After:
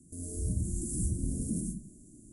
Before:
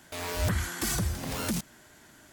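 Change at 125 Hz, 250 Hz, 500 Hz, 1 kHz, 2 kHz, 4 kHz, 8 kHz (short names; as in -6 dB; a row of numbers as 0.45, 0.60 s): -1.5 dB, -0.5 dB, -9.5 dB, under -35 dB, under -40 dB, under -25 dB, -3.0 dB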